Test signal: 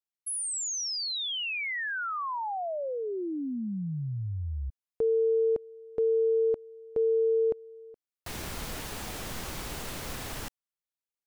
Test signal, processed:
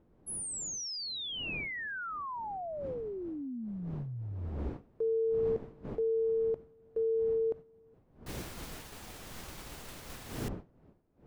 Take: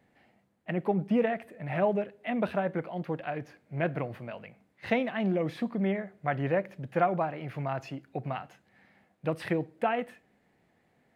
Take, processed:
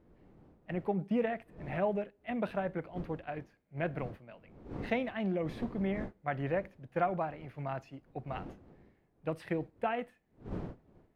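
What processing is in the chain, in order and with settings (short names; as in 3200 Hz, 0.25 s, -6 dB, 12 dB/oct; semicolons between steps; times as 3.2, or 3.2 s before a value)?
wind noise 320 Hz -43 dBFS; expander -32 dBFS, range -9 dB; gain -5 dB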